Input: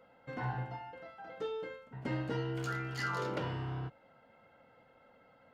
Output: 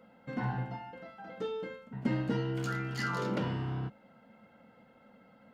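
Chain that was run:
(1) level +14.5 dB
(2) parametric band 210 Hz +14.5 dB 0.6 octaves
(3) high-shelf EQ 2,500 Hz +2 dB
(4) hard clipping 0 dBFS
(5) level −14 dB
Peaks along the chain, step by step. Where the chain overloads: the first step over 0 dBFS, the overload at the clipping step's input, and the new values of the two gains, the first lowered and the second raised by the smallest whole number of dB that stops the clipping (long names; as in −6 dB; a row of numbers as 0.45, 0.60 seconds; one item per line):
−11.0, −4.5, −4.5, −4.5, −18.5 dBFS
no step passes full scale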